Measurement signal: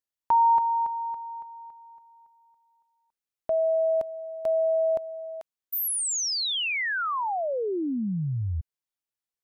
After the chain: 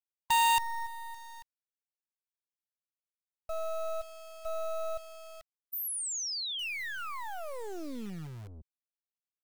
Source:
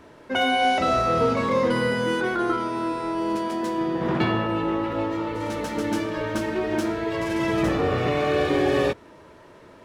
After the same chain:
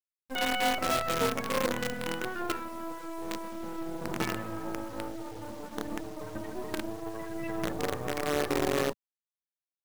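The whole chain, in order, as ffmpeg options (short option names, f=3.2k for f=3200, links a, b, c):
-filter_complex "[0:a]afftfilt=real='re*gte(hypot(re,im),0.126)':imag='im*gte(hypot(re,im),0.126)':win_size=1024:overlap=0.75,acrossover=split=150|2000[a][b][c];[a]aeval=exprs='(tanh(100*val(0)+0.45)-tanh(0.45))/100':c=same[d];[b]acrusher=bits=4:dc=4:mix=0:aa=0.000001[e];[d][e][c]amix=inputs=3:normalize=0,volume=-7dB"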